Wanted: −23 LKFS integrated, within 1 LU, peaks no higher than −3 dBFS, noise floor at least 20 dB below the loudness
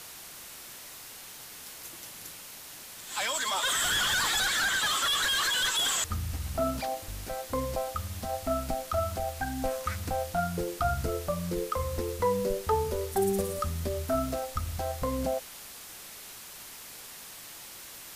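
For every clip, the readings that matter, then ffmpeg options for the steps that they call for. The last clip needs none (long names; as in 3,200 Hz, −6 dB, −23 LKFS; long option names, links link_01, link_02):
background noise floor −46 dBFS; target noise floor −50 dBFS; integrated loudness −29.5 LKFS; sample peak −16.0 dBFS; target loudness −23.0 LKFS
→ -af "afftdn=noise_reduction=6:noise_floor=-46"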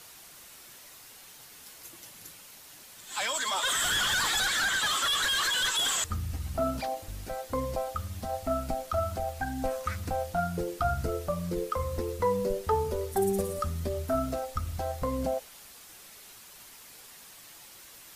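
background noise floor −51 dBFS; integrated loudness −29.5 LKFS; sample peak −16.0 dBFS; target loudness −23.0 LKFS
→ -af "volume=6.5dB"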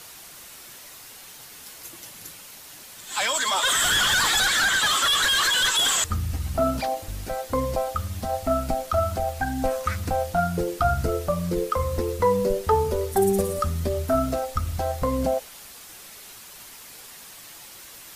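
integrated loudness −23.0 LKFS; sample peak −9.5 dBFS; background noise floor −44 dBFS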